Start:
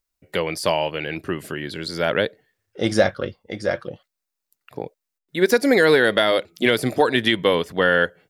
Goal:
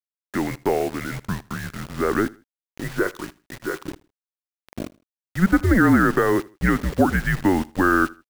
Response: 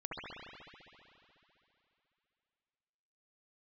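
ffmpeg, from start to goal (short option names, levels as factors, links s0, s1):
-filter_complex "[0:a]highpass=f=200:t=q:w=0.5412,highpass=f=200:t=q:w=1.307,lowpass=f=2100:t=q:w=0.5176,lowpass=f=2100:t=q:w=0.7071,lowpass=f=2100:t=q:w=1.932,afreqshift=-190,acrusher=bits=5:mix=0:aa=0.000001,asettb=1/sr,asplit=3[s0][s1][s2];[s0]atrim=end=2.814[s3];[s1]atrim=start=2.81:end=3.81,asetpts=PTS-STARTPTS,afade=t=in:d=0.004:c=qsin,afade=t=out:st=0.996:d=0.004:c=qsin,lowshelf=f=490:g=-9.5[s4];[s2]atrim=start=3.806[s5];[s3][s4]acrossfade=d=0.004:c1=hsin:c2=qsin[s6];[s6][s5]acrossfade=d=0.004:c1=qsin:c2=hsin,aecho=1:1:79|158:0.075|0.0217"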